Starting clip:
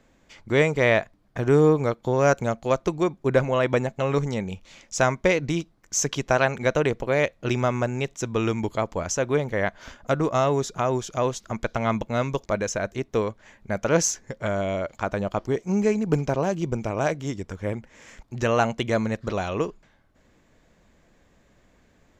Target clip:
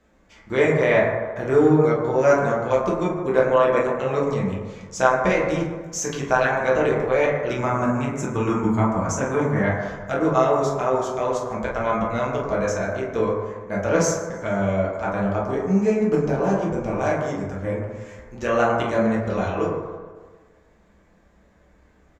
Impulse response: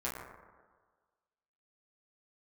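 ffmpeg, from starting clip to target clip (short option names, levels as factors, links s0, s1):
-filter_complex "[0:a]asettb=1/sr,asplit=3[s0][s1][s2];[s0]atrim=end=7.584[s3];[s1]atrim=start=7.58:end=9.6,asetpts=PTS-STARTPTS,afade=t=in:d=0.004:c=qsin,afade=t=out:st=2.016:d=0.004:c=qsin,equalizer=f=125:t=o:w=1:g=6,equalizer=f=250:t=o:w=1:g=7,equalizer=f=500:t=o:w=1:g=-7,equalizer=f=1000:t=o:w=1:g=5,equalizer=f=4000:t=o:w=1:g=-8,equalizer=f=8000:t=o:w=1:g=6[s4];[s2]atrim=start=9.596[s5];[s3][s4]acrossfade=d=0.004:c1=hsin:c2=qsin[s6];[s6][s5]acrossfade=d=0.004:c1=qsin:c2=hsin,aecho=1:1:152|304|456|608:0.0794|0.0413|0.0215|0.0112[s7];[1:a]atrim=start_sample=2205[s8];[s7][s8]afir=irnorm=-1:irlink=0,volume=0.794"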